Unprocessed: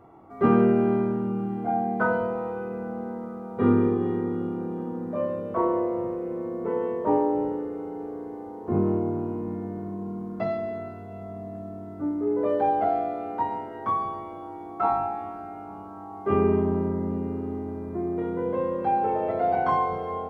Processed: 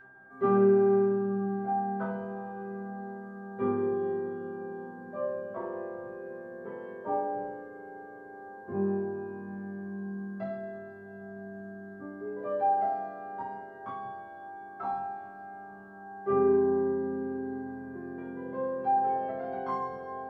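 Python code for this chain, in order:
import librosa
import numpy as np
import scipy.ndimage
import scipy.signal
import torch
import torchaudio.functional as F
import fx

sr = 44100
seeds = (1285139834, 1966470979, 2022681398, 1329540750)

y = x + 10.0 ** (-39.0 / 20.0) * np.sin(2.0 * np.pi * 1600.0 * np.arange(len(x)) / sr)
y = fx.resonator_bank(y, sr, root=48, chord='fifth', decay_s=0.25)
y = F.gain(torch.from_numpy(y), 3.0).numpy()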